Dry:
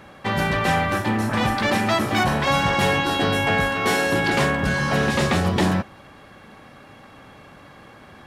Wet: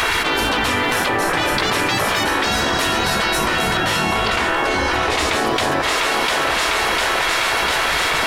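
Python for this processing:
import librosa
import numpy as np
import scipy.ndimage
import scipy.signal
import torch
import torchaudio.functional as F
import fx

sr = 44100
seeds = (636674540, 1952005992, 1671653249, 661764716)

p1 = fx.high_shelf(x, sr, hz=4000.0, db=-9.5, at=(3.77, 5.18))
p2 = fx.spec_gate(p1, sr, threshold_db=-10, keep='weak')
p3 = p2 + fx.echo_thinned(p2, sr, ms=700, feedback_pct=72, hz=420.0, wet_db=-21.0, dry=0)
p4 = fx.env_flatten(p3, sr, amount_pct=100)
y = p4 * librosa.db_to_amplitude(5.0)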